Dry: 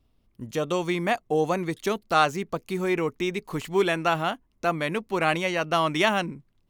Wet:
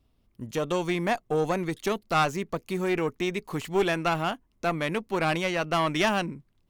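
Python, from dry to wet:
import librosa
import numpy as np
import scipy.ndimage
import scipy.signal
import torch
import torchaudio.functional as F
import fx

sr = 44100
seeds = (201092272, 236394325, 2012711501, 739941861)

y = fx.diode_clip(x, sr, knee_db=-20.5)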